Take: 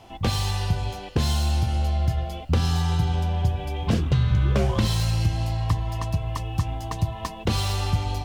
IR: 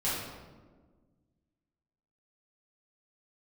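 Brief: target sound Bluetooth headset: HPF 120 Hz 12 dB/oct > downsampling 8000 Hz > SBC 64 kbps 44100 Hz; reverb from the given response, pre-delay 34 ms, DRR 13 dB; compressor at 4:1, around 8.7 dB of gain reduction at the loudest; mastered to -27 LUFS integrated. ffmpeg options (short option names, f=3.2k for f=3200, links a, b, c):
-filter_complex "[0:a]acompressor=threshold=-27dB:ratio=4,asplit=2[a][b];[1:a]atrim=start_sample=2205,adelay=34[c];[b][c]afir=irnorm=-1:irlink=0,volume=-21dB[d];[a][d]amix=inputs=2:normalize=0,highpass=120,aresample=8000,aresample=44100,volume=7.5dB" -ar 44100 -c:a sbc -b:a 64k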